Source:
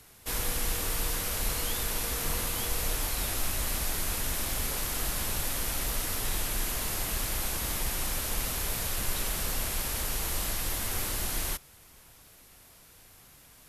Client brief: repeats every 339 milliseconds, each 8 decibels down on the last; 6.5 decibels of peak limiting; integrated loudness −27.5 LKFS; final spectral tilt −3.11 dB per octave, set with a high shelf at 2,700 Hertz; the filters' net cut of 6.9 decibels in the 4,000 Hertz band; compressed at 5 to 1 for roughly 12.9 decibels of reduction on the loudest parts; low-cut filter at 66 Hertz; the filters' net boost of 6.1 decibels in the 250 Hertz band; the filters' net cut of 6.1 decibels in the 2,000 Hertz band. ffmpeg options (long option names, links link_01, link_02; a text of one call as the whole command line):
ffmpeg -i in.wav -af "highpass=66,equalizer=frequency=250:width_type=o:gain=8,equalizer=frequency=2000:width_type=o:gain=-5,highshelf=frequency=2700:gain=-4.5,equalizer=frequency=4000:width_type=o:gain=-3.5,acompressor=threshold=-46dB:ratio=5,alimiter=level_in=16.5dB:limit=-24dB:level=0:latency=1,volume=-16.5dB,aecho=1:1:339|678|1017|1356|1695:0.398|0.159|0.0637|0.0255|0.0102,volume=21.5dB" out.wav